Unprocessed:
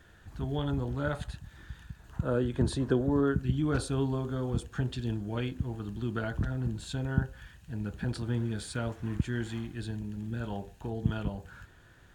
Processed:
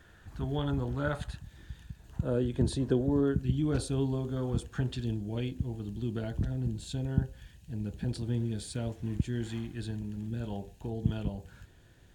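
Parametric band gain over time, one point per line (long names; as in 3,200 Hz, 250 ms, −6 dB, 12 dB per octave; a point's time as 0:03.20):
parametric band 1,300 Hz 1.1 octaves
+0.5 dB
from 0:01.43 −9 dB
from 0:04.37 −2 dB
from 0:05.05 −13.5 dB
from 0:09.43 −4 dB
from 0:10.29 −10.5 dB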